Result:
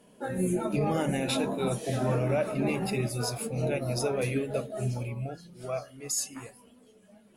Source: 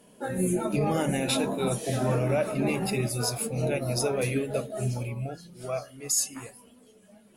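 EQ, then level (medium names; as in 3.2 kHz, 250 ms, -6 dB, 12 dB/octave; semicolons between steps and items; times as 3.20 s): treble shelf 5.9 kHz -5.5 dB; -1.5 dB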